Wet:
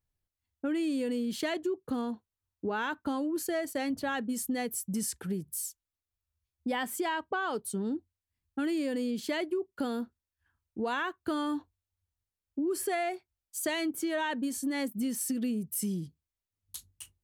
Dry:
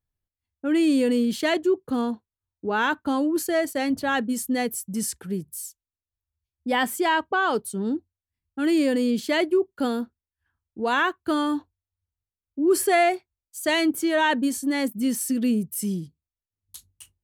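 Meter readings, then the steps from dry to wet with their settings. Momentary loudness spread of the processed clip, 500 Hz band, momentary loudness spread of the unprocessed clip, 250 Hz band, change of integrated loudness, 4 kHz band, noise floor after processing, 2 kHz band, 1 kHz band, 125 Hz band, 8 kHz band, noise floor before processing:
8 LU, −9.5 dB, 11 LU, −8.5 dB, −9.0 dB, −9.5 dB, below −85 dBFS, −10.0 dB, −10.0 dB, −5.0 dB, −5.0 dB, below −85 dBFS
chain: downward compressor 5 to 1, threshold −30 dBFS, peak gain reduction 13.5 dB

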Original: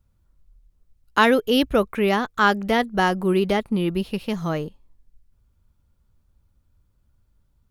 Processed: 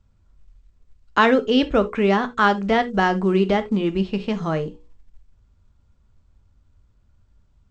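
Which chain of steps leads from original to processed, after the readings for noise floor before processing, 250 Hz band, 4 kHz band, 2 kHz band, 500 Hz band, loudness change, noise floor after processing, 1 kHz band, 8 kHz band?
−66 dBFS, +2.0 dB, −1.5 dB, 0.0 dB, +1.5 dB, +1.0 dB, −60 dBFS, +1.5 dB, can't be measured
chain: high-shelf EQ 4,600 Hz −9.5 dB
mains-hum notches 60/120/180/240/300/360/420/480/540 Hz
in parallel at −1.5 dB: downward compressor, threshold −31 dBFS, peak gain reduction 17.5 dB
on the sum: log-companded quantiser 8 bits
linear-phase brick-wall low-pass 8,300 Hz
reverb whose tail is shaped and stops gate 100 ms falling, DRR 10 dB

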